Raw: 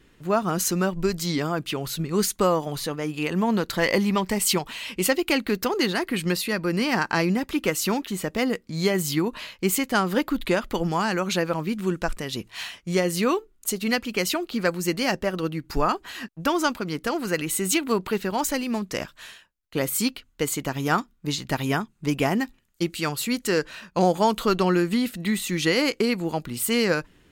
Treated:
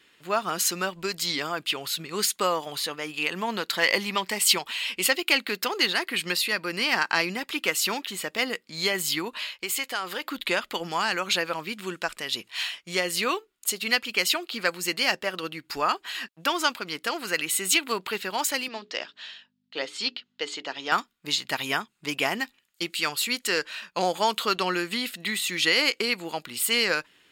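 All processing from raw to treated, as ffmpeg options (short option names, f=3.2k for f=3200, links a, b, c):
-filter_complex "[0:a]asettb=1/sr,asplit=3[a][b][c];[a]atrim=end=9.444[d];[b]atrim=start=9.44:end=10.25,asetpts=PTS-STARTPTS,afade=t=in:d=0.004:c=qsin,afade=t=out:st=0.806:d=0.004:c=qsin,equalizer=f=210:w=1.4:g=-8.5,acompressor=threshold=-24dB:ratio=5:attack=3.2:release=140:knee=1:detection=peak[e];[c]atrim=start=10.246[f];[d][e]acrossfade=d=0.004:c1=hsin:c2=qsin[g];[g][f]acrossfade=d=0.004:c1=qsin:c2=hsin,asettb=1/sr,asplit=3[h][i][j];[h]atrim=end=18.684[k];[i]atrim=start=18.68:end=20.92,asetpts=PTS-STARTPTS,afade=t=in:d=0.004:c=qsin,afade=t=out:st=2.236:d=0.004:c=qsin,bandreject=f=60:t=h:w=6,bandreject=f=120:t=h:w=6,bandreject=f=180:t=h:w=6,bandreject=f=240:t=h:w=6,bandreject=f=300:t=h:w=6,bandreject=f=360:t=h:w=6,bandreject=f=420:t=h:w=6,aeval=exprs='val(0)+0.00501*(sin(2*PI*50*n/s)+sin(2*PI*2*50*n/s)/2+sin(2*PI*3*50*n/s)/3+sin(2*PI*4*50*n/s)/4+sin(2*PI*5*50*n/s)/5)':c=same,highpass=300,equalizer=f=1.1k:t=q:w=4:g=-5,equalizer=f=1.5k:t=q:w=4:g=-3,equalizer=f=2.3k:t=q:w=4:g=-6,lowpass=f=5.2k:w=0.5412,lowpass=f=5.2k:w=1.3066[l];[j]atrim=start=20.916[m];[k][l]acrossfade=d=0.004:c1=hsin:c2=qsin[n];[n][m]acrossfade=d=0.004:c1=qsin:c2=hsin,highpass=f=850:p=1,equalizer=f=3.2k:w=0.8:g=6,bandreject=f=6k:w=13"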